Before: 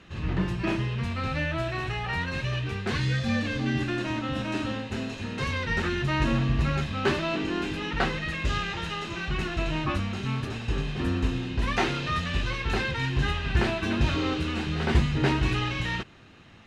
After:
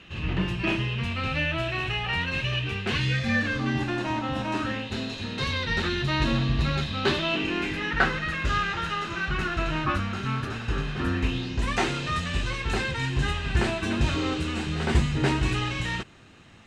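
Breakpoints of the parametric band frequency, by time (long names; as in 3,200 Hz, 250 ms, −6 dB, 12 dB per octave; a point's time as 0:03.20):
parametric band +9.5 dB 0.55 octaves
0:03.08 2,800 Hz
0:03.83 860 Hz
0:04.51 860 Hz
0:04.92 3,900 Hz
0:07.08 3,900 Hz
0:08.11 1,400 Hz
0:11.09 1,400 Hz
0:11.64 8,100 Hz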